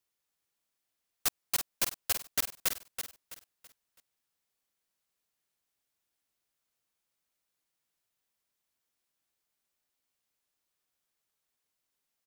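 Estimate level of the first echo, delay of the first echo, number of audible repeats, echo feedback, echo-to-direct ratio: -8.0 dB, 0.329 s, 3, 35%, -7.5 dB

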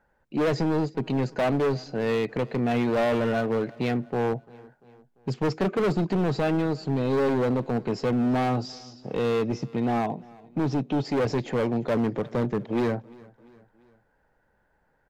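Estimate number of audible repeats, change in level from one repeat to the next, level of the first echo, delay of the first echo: 3, -5.5 dB, -23.5 dB, 0.344 s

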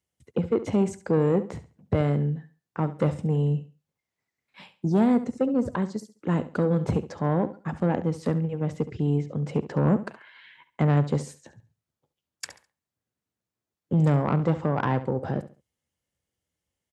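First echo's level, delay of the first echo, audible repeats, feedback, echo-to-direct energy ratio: -14.0 dB, 69 ms, 2, 27%, -13.5 dB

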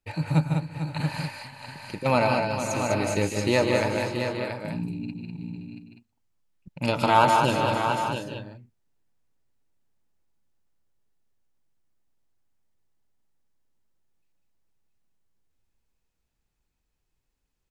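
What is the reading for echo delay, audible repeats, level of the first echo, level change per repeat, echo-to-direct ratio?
0.151 s, 10, -7.5 dB, no steady repeat, -0.5 dB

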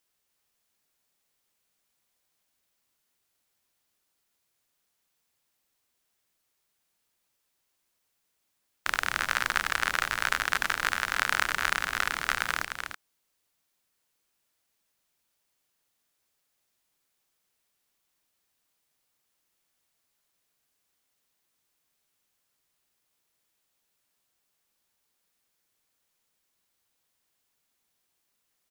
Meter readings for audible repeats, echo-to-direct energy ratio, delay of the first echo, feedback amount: 1, -6.0 dB, 0.298 s, no steady repeat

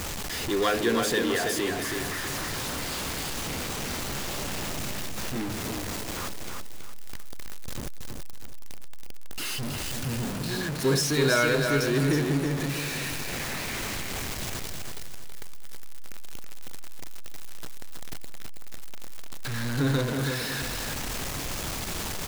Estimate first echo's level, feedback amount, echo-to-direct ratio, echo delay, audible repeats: -5.0 dB, 31%, -4.5 dB, 0.325 s, 3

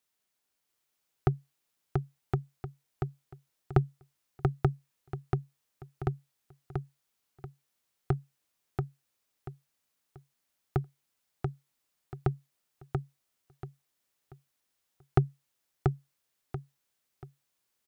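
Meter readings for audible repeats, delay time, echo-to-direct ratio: 4, 0.685 s, -3.0 dB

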